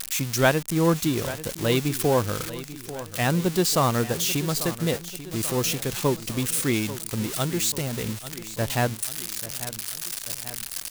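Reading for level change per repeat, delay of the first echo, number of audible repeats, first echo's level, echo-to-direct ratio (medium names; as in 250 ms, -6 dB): -4.5 dB, 840 ms, 3, -14.5 dB, -13.0 dB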